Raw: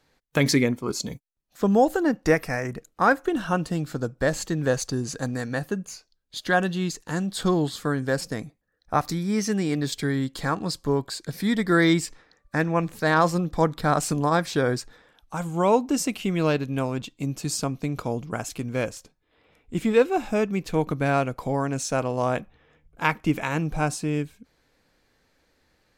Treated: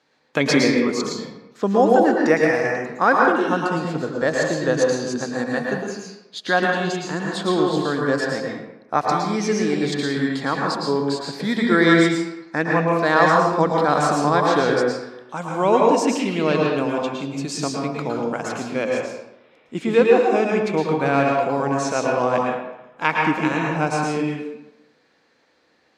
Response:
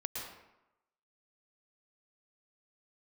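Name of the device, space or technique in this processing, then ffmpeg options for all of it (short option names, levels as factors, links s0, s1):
supermarket ceiling speaker: -filter_complex "[0:a]highpass=220,lowpass=5900[s0];[1:a]atrim=start_sample=2205[s1];[s0][s1]afir=irnorm=-1:irlink=0,volume=1.78"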